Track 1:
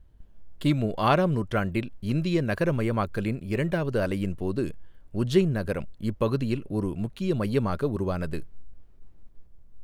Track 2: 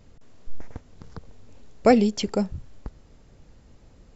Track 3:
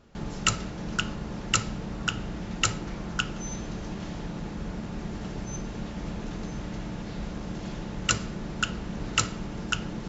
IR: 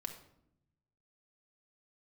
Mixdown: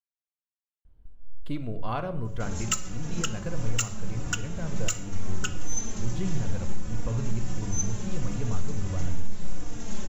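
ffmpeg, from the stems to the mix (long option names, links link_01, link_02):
-filter_complex "[0:a]bandreject=frequency=1800:width=12,asubboost=boost=12:cutoff=85,adelay=850,volume=-7.5dB,asplit=2[link_01][link_02];[link_02]volume=-3dB[link_03];[2:a]highshelf=frequency=2800:gain=11,aexciter=amount=3.2:drive=9.4:freq=6300,asplit=2[link_04][link_05];[link_05]adelay=3.6,afreqshift=-1.5[link_06];[link_04][link_06]amix=inputs=2:normalize=1,adelay=2250,volume=-2.5dB,asplit=2[link_07][link_08];[link_08]volume=-3.5dB[link_09];[link_01]acompressor=threshold=-35dB:ratio=6,volume=0dB[link_10];[3:a]atrim=start_sample=2205[link_11];[link_03][link_09]amix=inputs=2:normalize=0[link_12];[link_12][link_11]afir=irnorm=-1:irlink=0[link_13];[link_07][link_10][link_13]amix=inputs=3:normalize=0,highshelf=frequency=3700:gain=-10,alimiter=limit=-13.5dB:level=0:latency=1:release=497"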